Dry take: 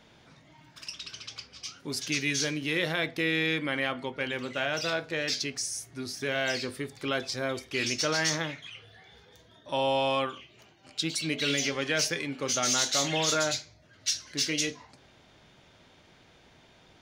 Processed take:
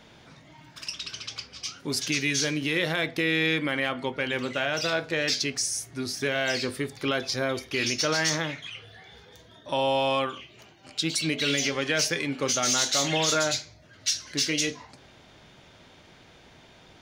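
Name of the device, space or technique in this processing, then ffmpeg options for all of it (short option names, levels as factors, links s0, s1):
clipper into limiter: -filter_complex "[0:a]asoftclip=type=hard:threshold=0.15,alimiter=limit=0.106:level=0:latency=1:release=168,asettb=1/sr,asplit=3[s0][s1][s2];[s0]atrim=end=6.964[s3];[s1]atrim=start=6.96:end=8.11,asetpts=PTS-STARTPTS,afade=t=in:d=0.004:c=qsin,afade=t=out:st=1.146:d=0.004:c=qsin,bandreject=f=7900:w=5[s4];[s2]atrim=start=8.106[s5];[s3][s4]acrossfade=d=0.004:c1=hsin:c2=qsin[s6];[s6][s5]acrossfade=d=0.004:c1=qsin:c2=hsin,volume=1.78"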